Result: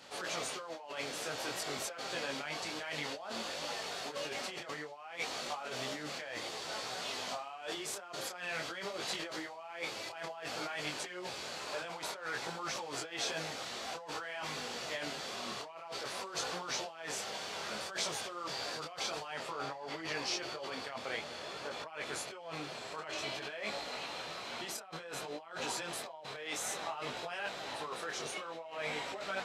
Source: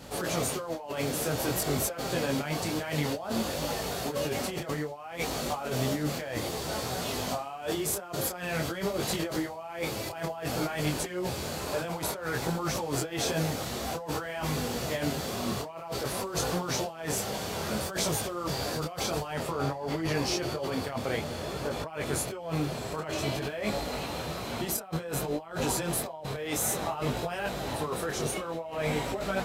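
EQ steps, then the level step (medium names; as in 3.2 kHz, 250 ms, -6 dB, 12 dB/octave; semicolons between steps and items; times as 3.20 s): differentiator; tape spacing loss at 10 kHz 30 dB; +14.0 dB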